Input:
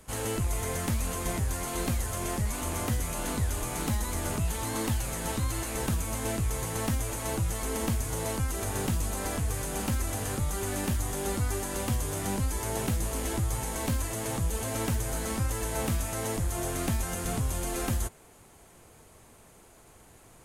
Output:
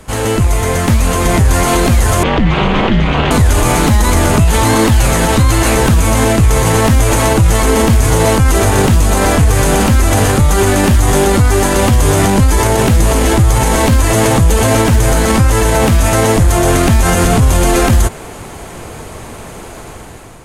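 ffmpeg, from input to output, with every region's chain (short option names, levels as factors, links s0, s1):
-filter_complex "[0:a]asettb=1/sr,asplit=3[s0][s1][s2];[s0]atrim=end=2.234[s3];[s1]atrim=start=2.23:end=3.31,asetpts=PTS-STARTPTS,afade=t=in:d=0.004:c=qsin,afade=t=out:st=1.076:d=0.004:c=qsin,lowpass=f=3200:t=q:w=2.5,aemphasis=mode=reproduction:type=50fm,aeval=exprs='val(0)*sin(2*PI*110*n/s)':c=same[s4];[s2]atrim=start=3.306[s5];[s3][s4]acrossfade=d=0.004:c1=hsin:c2=qsin[s6];[s6][s5]acrossfade=d=0.004:c1=qsin:c2=hsin,highshelf=f=7100:g=-10,dynaudnorm=f=990:g=3:m=3.16,alimiter=level_in=8.41:limit=0.891:release=50:level=0:latency=1,volume=0.891"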